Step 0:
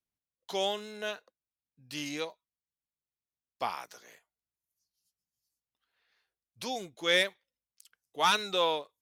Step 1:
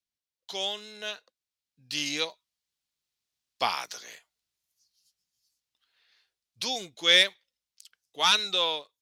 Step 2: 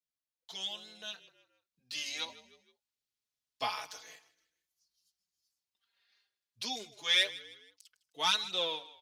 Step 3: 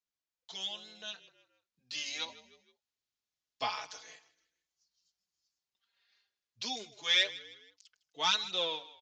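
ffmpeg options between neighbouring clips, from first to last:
-af "equalizer=f=4300:t=o:w=2:g=11.5,dynaudnorm=f=800:g=5:m=3.76,volume=0.473"
-filter_complex "[0:a]asplit=4[s0][s1][s2][s3];[s1]adelay=156,afreqshift=-33,volume=0.119[s4];[s2]adelay=312,afreqshift=-66,volume=0.0473[s5];[s3]adelay=468,afreqshift=-99,volume=0.0191[s6];[s0][s4][s5][s6]amix=inputs=4:normalize=0,asplit=2[s7][s8];[s8]adelay=4.2,afreqshift=0.26[s9];[s7][s9]amix=inputs=2:normalize=1,volume=0.631"
-af "aresample=16000,aresample=44100"

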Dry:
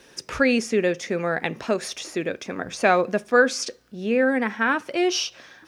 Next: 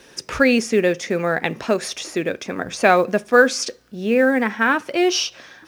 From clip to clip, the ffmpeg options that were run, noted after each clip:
-af "acrusher=bits=9:mode=log:mix=0:aa=0.000001,volume=1.58"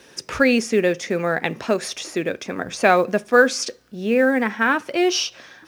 -af "highpass=52,volume=0.891"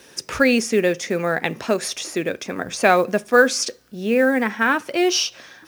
-af "highshelf=f=7700:g=8"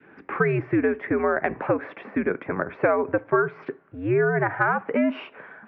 -af "highpass=f=250:t=q:w=0.5412,highpass=f=250:t=q:w=1.307,lowpass=f=2200:t=q:w=0.5176,lowpass=f=2200:t=q:w=0.7071,lowpass=f=2200:t=q:w=1.932,afreqshift=-100,adynamicequalizer=threshold=0.0282:dfrequency=750:dqfactor=0.86:tfrequency=750:tqfactor=0.86:attack=5:release=100:ratio=0.375:range=3.5:mode=boostabove:tftype=bell,acompressor=threshold=0.126:ratio=6"

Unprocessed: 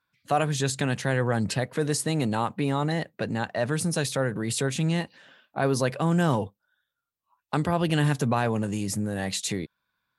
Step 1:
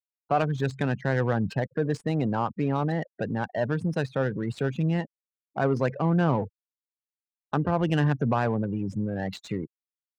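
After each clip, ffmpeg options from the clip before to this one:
-af "afftfilt=real='re*gte(hypot(re,im),0.0316)':imag='im*gte(hypot(re,im),0.0316)':win_size=1024:overlap=0.75,adynamicsmooth=sensitivity=2:basefreq=1500"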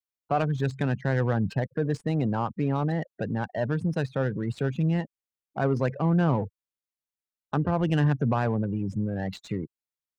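-af "lowshelf=f=170:g=5.5,volume=0.794"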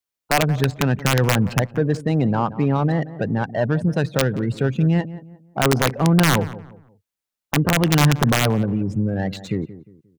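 -filter_complex "[0:a]aeval=exprs='(mod(5.62*val(0)+1,2)-1)/5.62':c=same,asplit=2[s0][s1];[s1]adelay=177,lowpass=f=1400:p=1,volume=0.178,asplit=2[s2][s3];[s3]adelay=177,lowpass=f=1400:p=1,volume=0.34,asplit=2[s4][s5];[s5]adelay=177,lowpass=f=1400:p=1,volume=0.34[s6];[s0][s2][s4][s6]amix=inputs=4:normalize=0,volume=2.24"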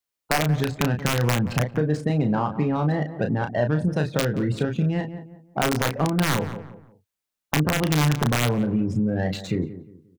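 -filter_complex "[0:a]acompressor=threshold=0.112:ratio=6,asplit=2[s0][s1];[s1]adelay=33,volume=0.501[s2];[s0][s2]amix=inputs=2:normalize=0"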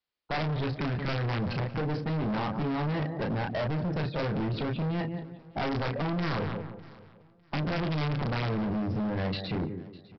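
-af "aresample=11025,volume=25.1,asoftclip=hard,volume=0.0398,aresample=44100,aecho=1:1:603|1206:0.0841|0.0227"

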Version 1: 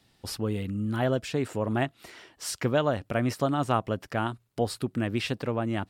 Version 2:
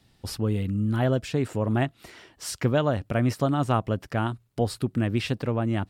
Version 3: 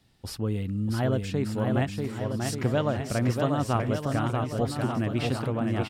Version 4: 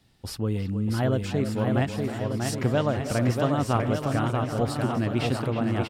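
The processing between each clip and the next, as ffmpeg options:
-af "lowshelf=f=190:g=8"
-af "aecho=1:1:640|1184|1646|2039|2374:0.631|0.398|0.251|0.158|0.1,volume=0.708"
-filter_complex "[0:a]asplit=2[s0][s1];[s1]adelay=320,highpass=300,lowpass=3400,asoftclip=type=hard:threshold=0.0794,volume=0.355[s2];[s0][s2]amix=inputs=2:normalize=0,volume=1.19"

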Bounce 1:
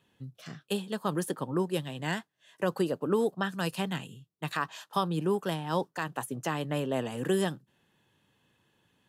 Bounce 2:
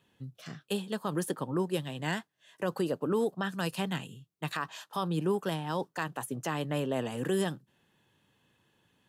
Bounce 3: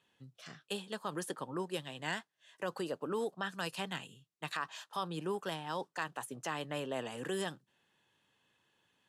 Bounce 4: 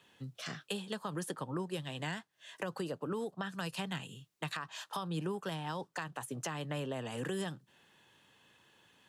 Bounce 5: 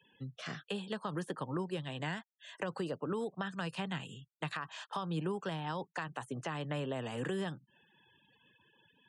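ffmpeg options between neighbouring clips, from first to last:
-af "alimiter=limit=0.0944:level=0:latency=1:release=56"
-af "lowpass=10000,lowshelf=f=380:g=-11,volume=0.794"
-filter_complex "[0:a]acrossover=split=160[s0][s1];[s1]acompressor=threshold=0.00447:ratio=6[s2];[s0][s2]amix=inputs=2:normalize=0,volume=2.99"
-filter_complex "[0:a]afftfilt=real='re*gte(hypot(re,im),0.00112)':imag='im*gte(hypot(re,im),0.00112)':win_size=1024:overlap=0.75,acrossover=split=3300[s0][s1];[s1]acompressor=threshold=0.00224:ratio=4:attack=1:release=60[s2];[s0][s2]amix=inputs=2:normalize=0,aresample=22050,aresample=44100,volume=1.12"

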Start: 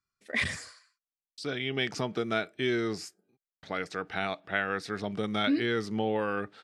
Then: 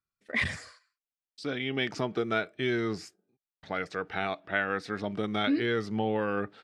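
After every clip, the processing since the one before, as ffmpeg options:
-af "highshelf=f=5300:g=-10,agate=range=0.501:threshold=0.00158:ratio=16:detection=peak,aphaser=in_gain=1:out_gain=1:delay=4:decay=0.22:speed=0.31:type=triangular,volume=1.12"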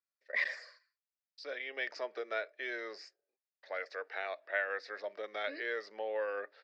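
-af "highpass=f=490:w=0.5412,highpass=f=490:w=1.3066,equalizer=f=560:t=q:w=4:g=9,equalizer=f=800:t=q:w=4:g=-5,equalizer=f=1300:t=q:w=4:g=-4,equalizer=f=1800:t=q:w=4:g=7,equalizer=f=3200:t=q:w=4:g=-7,equalizer=f=4900:t=q:w=4:g=6,lowpass=f=5500:w=0.5412,lowpass=f=5500:w=1.3066,volume=0.447"

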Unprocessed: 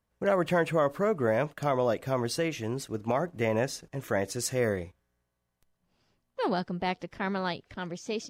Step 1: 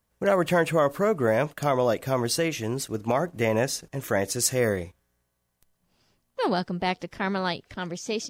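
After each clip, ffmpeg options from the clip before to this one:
-af "highshelf=f=5500:g=8,volume=1.5"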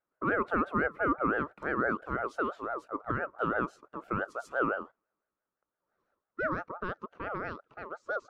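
-af "bandpass=f=410:t=q:w=1.9:csg=0,aeval=exprs='val(0)*sin(2*PI*890*n/s+890*0.2/5.9*sin(2*PI*5.9*n/s))':c=same"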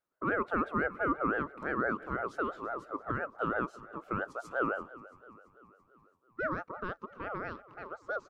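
-filter_complex "[0:a]asplit=6[s0][s1][s2][s3][s4][s5];[s1]adelay=336,afreqshift=-32,volume=0.119[s6];[s2]adelay=672,afreqshift=-64,volume=0.0692[s7];[s3]adelay=1008,afreqshift=-96,volume=0.0398[s8];[s4]adelay=1344,afreqshift=-128,volume=0.0232[s9];[s5]adelay=1680,afreqshift=-160,volume=0.0135[s10];[s0][s6][s7][s8][s9][s10]amix=inputs=6:normalize=0,volume=0.794"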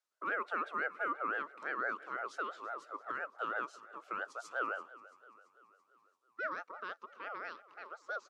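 -af "crystalizer=i=6.5:c=0,highpass=440,lowpass=5700,volume=0.422"

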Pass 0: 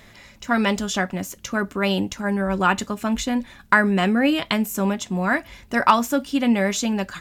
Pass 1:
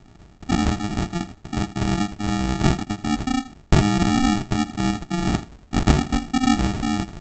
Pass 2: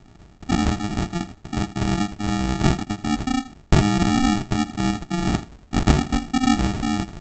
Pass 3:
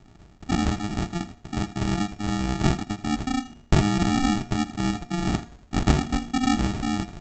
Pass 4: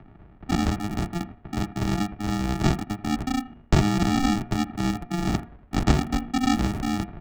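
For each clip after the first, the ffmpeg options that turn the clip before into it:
-af "aresample=16000,acrusher=samples=31:mix=1:aa=0.000001,aresample=44100,aecho=1:1:81:0.158"
-af anull
-af "bandreject=f=237.9:t=h:w=4,bandreject=f=475.8:t=h:w=4,bandreject=f=713.7:t=h:w=4,bandreject=f=951.6:t=h:w=4,bandreject=f=1189.5:t=h:w=4,bandreject=f=1427.4:t=h:w=4,bandreject=f=1665.3:t=h:w=4,bandreject=f=1903.2:t=h:w=4,bandreject=f=2141.1:t=h:w=4,bandreject=f=2379:t=h:w=4,bandreject=f=2616.9:t=h:w=4,bandreject=f=2854.8:t=h:w=4,bandreject=f=3092.7:t=h:w=4,bandreject=f=3330.6:t=h:w=4,bandreject=f=3568.5:t=h:w=4,bandreject=f=3806.4:t=h:w=4,bandreject=f=4044.3:t=h:w=4,bandreject=f=4282.2:t=h:w=4,bandreject=f=4520.1:t=h:w=4,bandreject=f=4758:t=h:w=4,bandreject=f=4995.9:t=h:w=4,bandreject=f=5233.8:t=h:w=4,bandreject=f=5471.7:t=h:w=4,bandreject=f=5709.6:t=h:w=4,bandreject=f=5947.5:t=h:w=4,bandreject=f=6185.4:t=h:w=4,bandreject=f=6423.3:t=h:w=4,bandreject=f=6661.2:t=h:w=4,bandreject=f=6899.1:t=h:w=4,bandreject=f=7137:t=h:w=4,volume=0.708"
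-filter_complex "[0:a]acompressor=mode=upward:threshold=0.00631:ratio=2.5,acrossover=split=140|2500[s0][s1][s2];[s2]aeval=exprs='val(0)*gte(abs(val(0)),0.0188)':c=same[s3];[s0][s1][s3]amix=inputs=3:normalize=0"

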